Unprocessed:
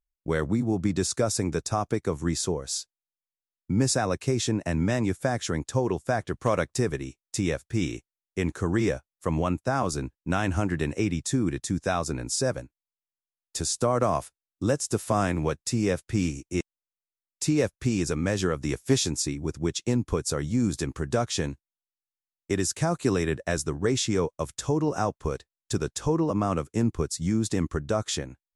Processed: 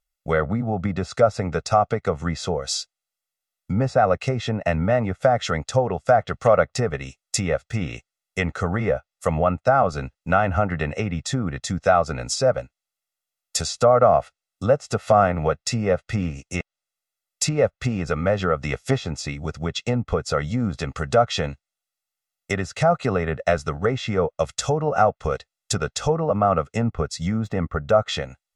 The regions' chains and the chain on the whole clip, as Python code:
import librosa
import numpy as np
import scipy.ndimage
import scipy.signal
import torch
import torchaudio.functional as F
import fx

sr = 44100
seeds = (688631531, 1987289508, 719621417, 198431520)

y = fx.chain(x, sr, fx.peak_eq(hz=4500.0, db=-4.0, octaves=0.27),
    fx.resample_bad(factor=2, down='none', up='zero_stuff'), at=(27.31, 27.97))
y = fx.env_lowpass_down(y, sr, base_hz=1400.0, full_db=-21.0)
y = fx.low_shelf(y, sr, hz=290.0, db=-10.5)
y = y + 0.82 * np.pad(y, (int(1.5 * sr / 1000.0), 0))[:len(y)]
y = F.gain(torch.from_numpy(y), 8.5).numpy()